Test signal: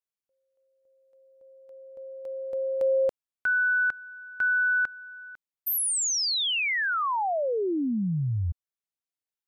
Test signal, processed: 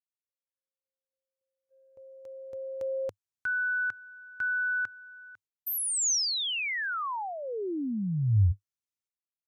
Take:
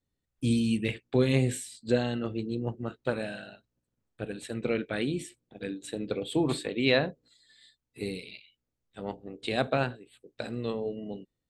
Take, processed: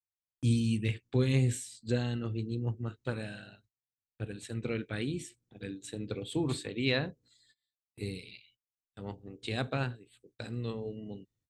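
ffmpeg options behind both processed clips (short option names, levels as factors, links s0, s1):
-af "equalizer=f=100:t=o:w=0.67:g=12,equalizer=f=630:t=o:w=0.67:g=-6,equalizer=f=6300:t=o:w=0.67:g=6,agate=range=0.0447:threshold=0.00355:ratio=16:release=300:detection=rms,volume=0.562"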